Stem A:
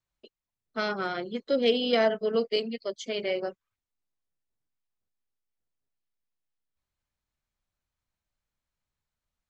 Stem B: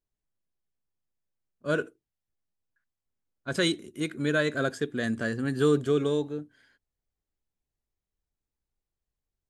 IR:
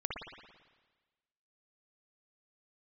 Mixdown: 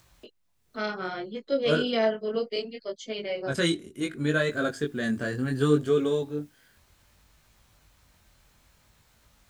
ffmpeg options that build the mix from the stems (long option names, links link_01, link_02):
-filter_complex "[0:a]highpass=52,acompressor=mode=upward:threshold=-37dB:ratio=2.5,volume=0.5dB[link_01];[1:a]volume=3dB[link_02];[link_01][link_02]amix=inputs=2:normalize=0,lowshelf=frequency=61:gain=8,flanger=delay=18:depth=5.8:speed=0.66"